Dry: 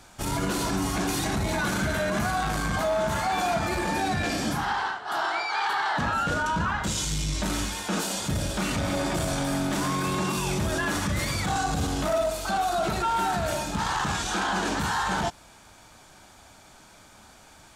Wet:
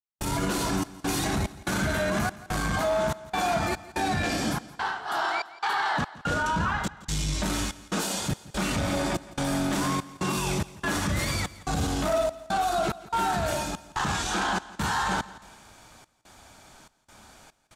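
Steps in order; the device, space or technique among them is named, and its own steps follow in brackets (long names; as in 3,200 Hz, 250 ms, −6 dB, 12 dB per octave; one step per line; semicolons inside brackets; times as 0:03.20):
trance gate with a delay (gate pattern ".xxx.xx.xxx" 72 BPM −60 dB; repeating echo 169 ms, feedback 40%, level −18.5 dB)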